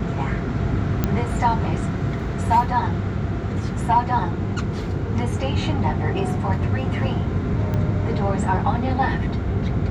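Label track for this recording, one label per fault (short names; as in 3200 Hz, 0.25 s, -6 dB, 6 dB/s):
1.040000	1.040000	pop -7 dBFS
7.740000	7.740000	pop -14 dBFS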